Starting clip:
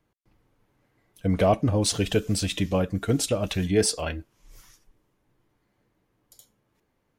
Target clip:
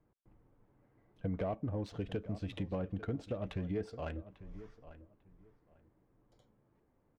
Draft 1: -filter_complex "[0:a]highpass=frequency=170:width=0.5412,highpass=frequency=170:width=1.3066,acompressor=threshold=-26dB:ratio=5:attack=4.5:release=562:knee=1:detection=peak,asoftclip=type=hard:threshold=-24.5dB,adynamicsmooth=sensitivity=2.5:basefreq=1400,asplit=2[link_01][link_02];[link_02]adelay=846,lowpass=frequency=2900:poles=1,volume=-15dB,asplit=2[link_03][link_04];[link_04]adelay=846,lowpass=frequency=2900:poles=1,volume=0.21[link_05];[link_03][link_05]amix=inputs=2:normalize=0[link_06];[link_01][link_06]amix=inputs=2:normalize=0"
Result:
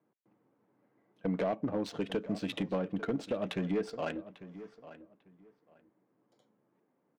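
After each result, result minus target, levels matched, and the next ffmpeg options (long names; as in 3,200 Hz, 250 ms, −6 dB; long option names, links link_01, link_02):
125 Hz band −6.5 dB; downward compressor: peak gain reduction −5.5 dB
-filter_complex "[0:a]acompressor=threshold=-26dB:ratio=5:attack=4.5:release=562:knee=1:detection=peak,asoftclip=type=hard:threshold=-24.5dB,adynamicsmooth=sensitivity=2.5:basefreq=1400,asplit=2[link_01][link_02];[link_02]adelay=846,lowpass=frequency=2900:poles=1,volume=-15dB,asplit=2[link_03][link_04];[link_04]adelay=846,lowpass=frequency=2900:poles=1,volume=0.21[link_05];[link_03][link_05]amix=inputs=2:normalize=0[link_06];[link_01][link_06]amix=inputs=2:normalize=0"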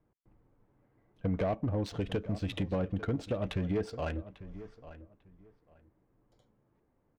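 downward compressor: peak gain reduction −5.5 dB
-filter_complex "[0:a]acompressor=threshold=-33dB:ratio=5:attack=4.5:release=562:knee=1:detection=peak,asoftclip=type=hard:threshold=-24.5dB,adynamicsmooth=sensitivity=2.5:basefreq=1400,asplit=2[link_01][link_02];[link_02]adelay=846,lowpass=frequency=2900:poles=1,volume=-15dB,asplit=2[link_03][link_04];[link_04]adelay=846,lowpass=frequency=2900:poles=1,volume=0.21[link_05];[link_03][link_05]amix=inputs=2:normalize=0[link_06];[link_01][link_06]amix=inputs=2:normalize=0"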